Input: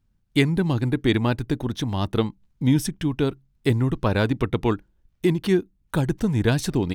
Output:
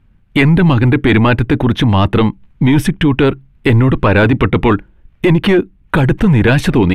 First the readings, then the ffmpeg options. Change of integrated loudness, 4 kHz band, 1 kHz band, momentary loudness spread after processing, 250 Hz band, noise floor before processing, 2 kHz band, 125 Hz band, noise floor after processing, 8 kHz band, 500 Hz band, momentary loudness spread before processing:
+11.0 dB, +9.0 dB, +13.5 dB, 6 LU, +11.0 dB, -67 dBFS, +14.0 dB, +11.5 dB, -50 dBFS, +2.0 dB, +10.0 dB, 6 LU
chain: -af "aresample=32000,aresample=44100,apsyclip=12.6,highshelf=f=3700:t=q:w=1.5:g=-12.5,volume=0.562"

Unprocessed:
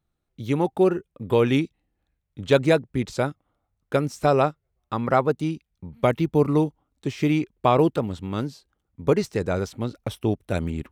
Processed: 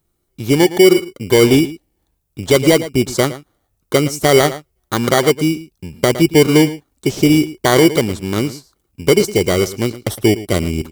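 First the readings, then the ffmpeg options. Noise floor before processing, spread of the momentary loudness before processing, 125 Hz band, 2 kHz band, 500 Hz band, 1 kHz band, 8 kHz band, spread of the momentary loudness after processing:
-78 dBFS, 11 LU, +7.0 dB, +12.0 dB, +8.5 dB, +4.0 dB, +21.5 dB, 11 LU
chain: -filter_complex "[0:a]equalizer=f=370:w=3.3:g=8,acrossover=split=3500[s0][s1];[s0]acrusher=samples=17:mix=1:aa=0.000001[s2];[s1]crystalizer=i=2:c=0[s3];[s2][s3]amix=inputs=2:normalize=0,asplit=2[s4][s5];[s5]adelay=110.8,volume=0.158,highshelf=f=4000:g=-2.49[s6];[s4][s6]amix=inputs=2:normalize=0,alimiter=level_in=2.66:limit=0.891:release=50:level=0:latency=1,volume=0.891"

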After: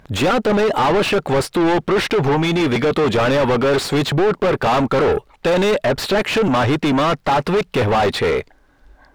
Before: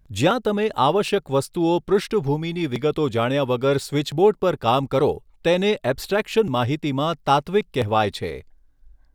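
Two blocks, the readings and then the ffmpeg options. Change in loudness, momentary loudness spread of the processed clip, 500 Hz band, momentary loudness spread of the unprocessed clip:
+4.5 dB, 3 LU, +4.0 dB, 5 LU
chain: -filter_complex "[0:a]asplit=2[s0][s1];[s1]highpass=f=720:p=1,volume=50.1,asoftclip=type=tanh:threshold=0.531[s2];[s0][s2]amix=inputs=2:normalize=0,lowpass=f=1500:p=1,volume=0.501,acontrast=87,volume=0.398"

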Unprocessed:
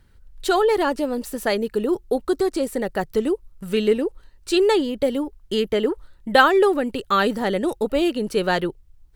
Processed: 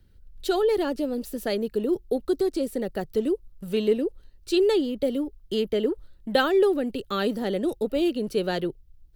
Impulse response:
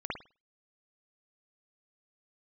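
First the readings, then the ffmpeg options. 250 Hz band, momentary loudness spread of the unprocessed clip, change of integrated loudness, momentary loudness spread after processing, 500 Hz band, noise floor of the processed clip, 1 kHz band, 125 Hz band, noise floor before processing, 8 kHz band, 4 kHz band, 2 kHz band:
-3.0 dB, 8 LU, -4.5 dB, 8 LU, -3.5 dB, -54 dBFS, -10.5 dB, -3.5 dB, -53 dBFS, -7.5 dB, -5.0 dB, -9.5 dB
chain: -filter_complex "[0:a]equalizer=f=1000:t=o:w=1:g=-11,equalizer=f=2000:t=o:w=1:g=-6,equalizer=f=8000:t=o:w=1:g=-7,acrossover=split=200|1300[s0][s1][s2];[s0]asoftclip=type=hard:threshold=0.0141[s3];[s3][s1][s2]amix=inputs=3:normalize=0,volume=0.841"

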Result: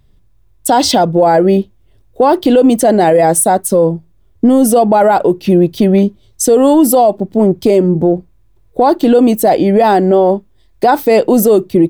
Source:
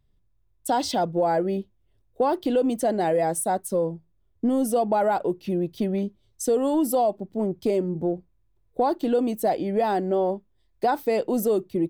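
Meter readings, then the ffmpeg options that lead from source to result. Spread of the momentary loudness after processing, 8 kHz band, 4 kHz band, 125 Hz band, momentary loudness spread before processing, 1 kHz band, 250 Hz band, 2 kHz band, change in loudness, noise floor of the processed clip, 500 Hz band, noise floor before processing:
6 LU, +16.5 dB, +15.5 dB, +15.5 dB, 7 LU, +13.0 dB, +15.0 dB, +13.5 dB, +14.0 dB, -49 dBFS, +13.5 dB, -66 dBFS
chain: -af "alimiter=level_in=7.5:limit=0.891:release=50:level=0:latency=1,volume=0.891"

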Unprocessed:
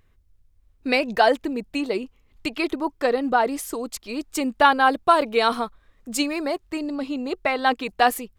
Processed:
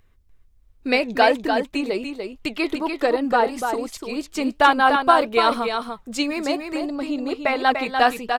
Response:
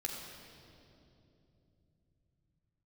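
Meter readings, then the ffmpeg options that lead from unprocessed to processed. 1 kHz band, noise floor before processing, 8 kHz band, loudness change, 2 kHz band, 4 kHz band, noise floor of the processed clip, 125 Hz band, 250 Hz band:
+2.0 dB, -61 dBFS, -4.0 dB, +1.5 dB, +2.0 dB, +2.0 dB, -56 dBFS, no reading, +1.5 dB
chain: -filter_complex "[0:a]acrossover=split=6300[s0][s1];[s1]acompressor=threshold=0.00794:ratio=4:attack=1:release=60[s2];[s0][s2]amix=inputs=2:normalize=0,flanger=delay=1.2:depth=6.2:regen=79:speed=1.3:shape=triangular,aecho=1:1:294:0.501,volume=1.88"

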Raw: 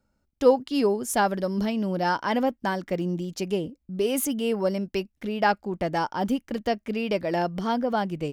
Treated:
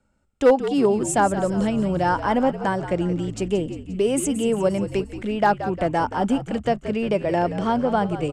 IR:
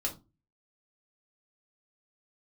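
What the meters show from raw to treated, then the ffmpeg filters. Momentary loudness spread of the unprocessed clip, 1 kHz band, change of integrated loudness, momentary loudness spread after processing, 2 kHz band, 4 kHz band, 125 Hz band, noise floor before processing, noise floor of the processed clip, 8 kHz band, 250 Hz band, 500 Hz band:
6 LU, +4.0 dB, +4.0 dB, 5 LU, +1.5 dB, -1.0 dB, +5.5 dB, -74 dBFS, -57 dBFS, +4.0 dB, +4.5 dB, +4.0 dB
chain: -filter_complex "[0:a]acrossover=split=300|1600|5600[s0][s1][s2][s3];[s2]acompressor=threshold=0.00501:ratio=6[s4];[s0][s1][s4][s3]amix=inputs=4:normalize=0,lowpass=f=8000:t=q:w=5.8,highshelf=f=3900:t=q:w=1.5:g=-7.5,volume=4.47,asoftclip=hard,volume=0.224,asplit=7[s5][s6][s7][s8][s9][s10][s11];[s6]adelay=176,afreqshift=-62,volume=0.266[s12];[s7]adelay=352,afreqshift=-124,volume=0.143[s13];[s8]adelay=528,afreqshift=-186,volume=0.0776[s14];[s9]adelay=704,afreqshift=-248,volume=0.0417[s15];[s10]adelay=880,afreqshift=-310,volume=0.0226[s16];[s11]adelay=1056,afreqshift=-372,volume=0.0122[s17];[s5][s12][s13][s14][s15][s16][s17]amix=inputs=7:normalize=0,volume=1.58"

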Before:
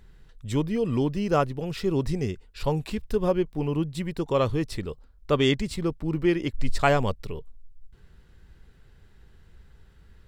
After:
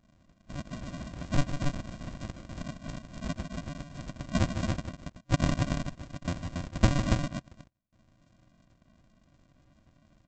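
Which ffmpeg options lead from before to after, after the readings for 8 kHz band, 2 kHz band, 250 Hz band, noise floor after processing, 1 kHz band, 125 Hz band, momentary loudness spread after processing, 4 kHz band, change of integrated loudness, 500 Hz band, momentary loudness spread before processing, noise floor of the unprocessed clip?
+0.5 dB, -6.0 dB, -7.0 dB, -67 dBFS, -9.0 dB, -2.5 dB, 14 LU, -6.5 dB, -7.0 dB, -15.0 dB, 10 LU, -55 dBFS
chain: -filter_complex "[0:a]acrossover=split=3400[s0][s1];[s1]acompressor=threshold=0.00562:ratio=4:attack=1:release=60[s2];[s0][s2]amix=inputs=2:normalize=0,afftfilt=real='re*between(b*sr/4096,1000,4300)':imag='im*between(b*sr/4096,1000,4300)':win_size=4096:overlap=0.75,aresample=16000,acrusher=samples=37:mix=1:aa=0.000001,aresample=44100,aecho=1:1:151.6|279.9:0.355|0.631,volume=1.88"

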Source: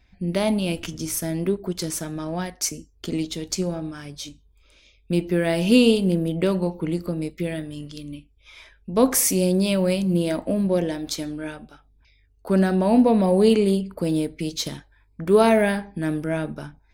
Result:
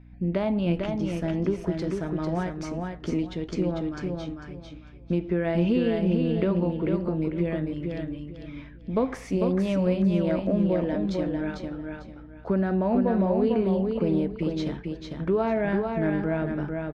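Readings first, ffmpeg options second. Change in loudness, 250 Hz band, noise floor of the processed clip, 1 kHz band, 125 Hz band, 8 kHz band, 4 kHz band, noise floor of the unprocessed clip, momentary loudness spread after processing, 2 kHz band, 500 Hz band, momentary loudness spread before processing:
-4.5 dB, -3.0 dB, -44 dBFS, -4.5 dB, -1.0 dB, under -20 dB, -13.0 dB, -59 dBFS, 12 LU, -5.5 dB, -4.0 dB, 18 LU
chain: -af "acompressor=threshold=0.0891:ratio=6,aecho=1:1:448|896|1344:0.596|0.143|0.0343,aeval=exprs='val(0)+0.00447*(sin(2*PI*60*n/s)+sin(2*PI*2*60*n/s)/2+sin(2*PI*3*60*n/s)/3+sin(2*PI*4*60*n/s)/4+sin(2*PI*5*60*n/s)/5)':c=same,lowpass=2000"

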